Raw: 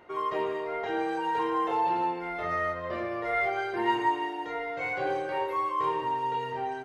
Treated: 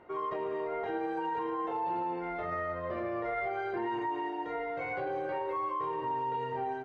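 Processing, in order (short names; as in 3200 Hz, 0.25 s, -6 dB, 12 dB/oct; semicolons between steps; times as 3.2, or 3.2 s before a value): LPF 1300 Hz 6 dB/oct; limiter -26.5 dBFS, peak gain reduction 9.5 dB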